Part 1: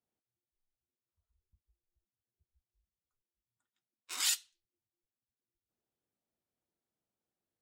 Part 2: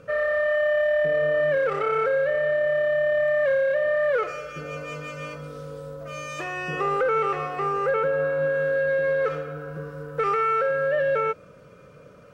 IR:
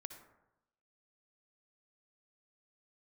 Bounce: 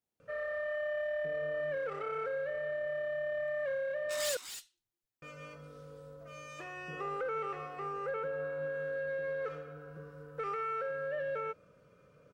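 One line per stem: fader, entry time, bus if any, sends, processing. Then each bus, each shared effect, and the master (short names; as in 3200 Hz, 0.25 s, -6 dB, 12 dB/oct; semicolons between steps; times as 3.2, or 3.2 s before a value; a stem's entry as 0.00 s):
-0.5 dB, 0.00 s, no send, echo send -8.5 dB, soft clip -32 dBFS, distortion -9 dB
-13.5 dB, 0.20 s, muted 4.37–5.22, no send, no echo send, dry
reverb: off
echo: echo 0.251 s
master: dry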